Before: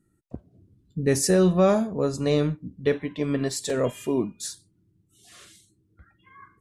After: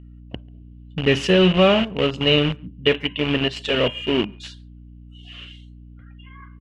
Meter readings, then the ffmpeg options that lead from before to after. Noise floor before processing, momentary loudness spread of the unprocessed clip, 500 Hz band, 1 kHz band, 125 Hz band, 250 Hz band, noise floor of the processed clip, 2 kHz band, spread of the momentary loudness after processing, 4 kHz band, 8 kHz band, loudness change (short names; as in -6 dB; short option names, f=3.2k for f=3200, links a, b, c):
-68 dBFS, 13 LU, +3.5 dB, +5.0 dB, +3.0 dB, +3.0 dB, -43 dBFS, +12.0 dB, 23 LU, +16.0 dB, under -10 dB, +5.0 dB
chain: -filter_complex "[0:a]aeval=exprs='val(0)+0.00891*(sin(2*PI*60*n/s)+sin(2*PI*2*60*n/s)/2+sin(2*PI*3*60*n/s)/3+sin(2*PI*4*60*n/s)/4+sin(2*PI*5*60*n/s)/5)':c=same,asplit=2[a][b];[b]acrusher=bits=3:mix=0:aa=0.000001,volume=-7dB[c];[a][c]amix=inputs=2:normalize=0,lowpass=f=2.9k:t=q:w=13,asplit=2[d][e];[e]adelay=140,highpass=300,lowpass=3.4k,asoftclip=type=hard:threshold=-12dB,volume=-29dB[f];[d][f]amix=inputs=2:normalize=0"